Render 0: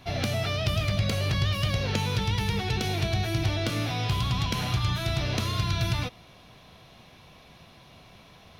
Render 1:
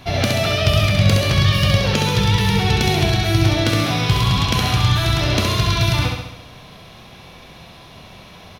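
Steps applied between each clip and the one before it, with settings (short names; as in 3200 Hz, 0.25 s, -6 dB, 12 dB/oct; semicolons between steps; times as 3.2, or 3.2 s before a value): feedback echo 67 ms, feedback 57%, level -4 dB; gain +9 dB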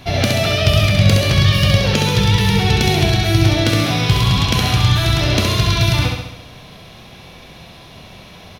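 bell 1100 Hz -3 dB 0.94 oct; gain +2.5 dB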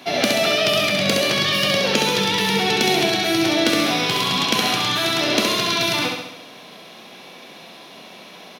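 HPF 220 Hz 24 dB/oct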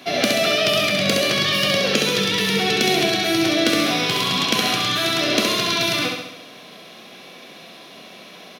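notch 890 Hz, Q 5.2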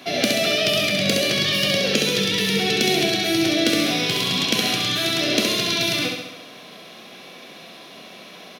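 dynamic EQ 1100 Hz, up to -8 dB, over -39 dBFS, Q 1.3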